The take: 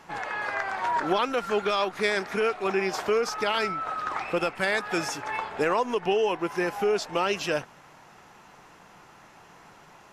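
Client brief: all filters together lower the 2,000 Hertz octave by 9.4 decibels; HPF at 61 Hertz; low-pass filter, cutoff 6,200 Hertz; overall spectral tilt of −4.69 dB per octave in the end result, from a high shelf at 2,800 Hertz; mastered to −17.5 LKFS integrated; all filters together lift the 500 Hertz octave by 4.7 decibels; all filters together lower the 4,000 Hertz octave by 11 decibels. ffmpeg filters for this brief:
ffmpeg -i in.wav -af "highpass=61,lowpass=6200,equalizer=frequency=500:width_type=o:gain=6.5,equalizer=frequency=2000:width_type=o:gain=-9,highshelf=frequency=2800:gain=-7,equalizer=frequency=4000:width_type=o:gain=-5,volume=8dB" out.wav

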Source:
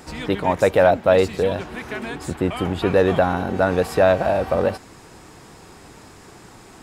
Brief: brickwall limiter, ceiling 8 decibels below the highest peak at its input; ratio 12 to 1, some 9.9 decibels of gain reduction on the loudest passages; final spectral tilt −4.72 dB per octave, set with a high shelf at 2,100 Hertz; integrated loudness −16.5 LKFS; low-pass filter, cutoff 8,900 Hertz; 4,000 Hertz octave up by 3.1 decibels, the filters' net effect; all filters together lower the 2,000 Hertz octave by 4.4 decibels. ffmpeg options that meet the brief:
ffmpeg -i in.wav -af "lowpass=8900,equalizer=frequency=2000:width_type=o:gain=-6.5,highshelf=frequency=2100:gain=-3,equalizer=frequency=4000:width_type=o:gain=8.5,acompressor=threshold=-21dB:ratio=12,volume=13.5dB,alimiter=limit=-6dB:level=0:latency=1" out.wav

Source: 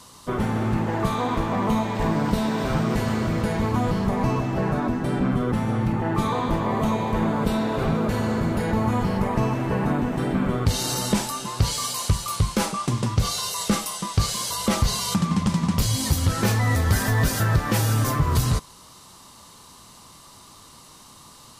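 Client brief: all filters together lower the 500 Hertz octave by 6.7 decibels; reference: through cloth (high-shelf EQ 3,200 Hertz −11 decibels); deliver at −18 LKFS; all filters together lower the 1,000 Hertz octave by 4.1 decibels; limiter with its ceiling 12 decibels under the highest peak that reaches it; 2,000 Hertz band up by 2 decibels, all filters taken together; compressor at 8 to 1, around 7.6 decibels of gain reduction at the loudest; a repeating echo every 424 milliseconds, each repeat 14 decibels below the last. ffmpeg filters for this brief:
ffmpeg -i in.wav -af "equalizer=frequency=500:width_type=o:gain=-8,equalizer=frequency=1000:width_type=o:gain=-3.5,equalizer=frequency=2000:width_type=o:gain=7.5,acompressor=threshold=-23dB:ratio=8,alimiter=level_in=1dB:limit=-24dB:level=0:latency=1,volume=-1dB,highshelf=frequency=3200:gain=-11,aecho=1:1:424|848:0.2|0.0399,volume=16.5dB" out.wav

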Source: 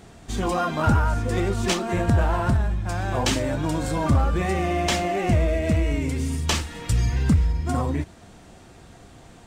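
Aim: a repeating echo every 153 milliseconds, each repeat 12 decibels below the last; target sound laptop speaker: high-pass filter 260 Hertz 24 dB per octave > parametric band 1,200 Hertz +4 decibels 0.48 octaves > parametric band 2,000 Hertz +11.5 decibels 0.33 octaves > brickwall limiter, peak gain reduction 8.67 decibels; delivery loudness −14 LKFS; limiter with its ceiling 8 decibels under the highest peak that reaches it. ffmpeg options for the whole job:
ffmpeg -i in.wav -af "alimiter=limit=-17dB:level=0:latency=1,highpass=frequency=260:width=0.5412,highpass=frequency=260:width=1.3066,equalizer=frequency=1200:width_type=o:width=0.48:gain=4,equalizer=frequency=2000:width_type=o:width=0.33:gain=11.5,aecho=1:1:153|306|459:0.251|0.0628|0.0157,volume=17dB,alimiter=limit=-5dB:level=0:latency=1" out.wav

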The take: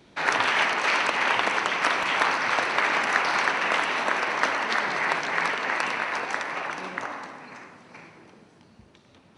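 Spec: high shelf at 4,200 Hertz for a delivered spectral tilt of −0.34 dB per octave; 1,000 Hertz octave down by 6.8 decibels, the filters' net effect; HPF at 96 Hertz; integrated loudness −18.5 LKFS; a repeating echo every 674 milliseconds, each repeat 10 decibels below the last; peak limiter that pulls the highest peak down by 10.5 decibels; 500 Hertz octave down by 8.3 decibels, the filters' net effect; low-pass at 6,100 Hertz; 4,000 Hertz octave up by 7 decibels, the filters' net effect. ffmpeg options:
ffmpeg -i in.wav -af "highpass=96,lowpass=6100,equalizer=frequency=500:width_type=o:gain=-8.5,equalizer=frequency=1000:width_type=o:gain=-7.5,equalizer=frequency=4000:width_type=o:gain=8.5,highshelf=frequency=4200:gain=4,alimiter=limit=-15dB:level=0:latency=1,aecho=1:1:674|1348|2022|2696:0.316|0.101|0.0324|0.0104,volume=6.5dB" out.wav

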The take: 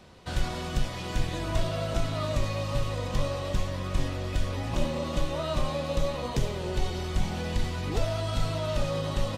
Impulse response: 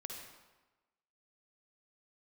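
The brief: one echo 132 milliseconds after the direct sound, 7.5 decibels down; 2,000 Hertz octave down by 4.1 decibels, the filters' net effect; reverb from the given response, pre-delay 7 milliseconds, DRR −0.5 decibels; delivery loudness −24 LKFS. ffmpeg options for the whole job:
-filter_complex "[0:a]equalizer=frequency=2000:width_type=o:gain=-5.5,aecho=1:1:132:0.422,asplit=2[link_01][link_02];[1:a]atrim=start_sample=2205,adelay=7[link_03];[link_02][link_03]afir=irnorm=-1:irlink=0,volume=3dB[link_04];[link_01][link_04]amix=inputs=2:normalize=0,volume=3.5dB"

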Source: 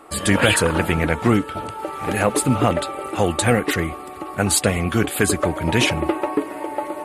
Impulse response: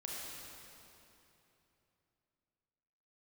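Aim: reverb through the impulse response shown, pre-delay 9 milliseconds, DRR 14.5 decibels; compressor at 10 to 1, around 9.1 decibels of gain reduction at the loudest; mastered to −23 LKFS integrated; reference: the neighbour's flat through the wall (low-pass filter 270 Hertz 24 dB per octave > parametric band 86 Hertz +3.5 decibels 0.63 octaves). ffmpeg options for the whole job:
-filter_complex "[0:a]acompressor=threshold=-21dB:ratio=10,asplit=2[link_01][link_02];[1:a]atrim=start_sample=2205,adelay=9[link_03];[link_02][link_03]afir=irnorm=-1:irlink=0,volume=-14.5dB[link_04];[link_01][link_04]amix=inputs=2:normalize=0,lowpass=frequency=270:width=0.5412,lowpass=frequency=270:width=1.3066,equalizer=frequency=86:width_type=o:width=0.63:gain=3.5,volume=8.5dB"

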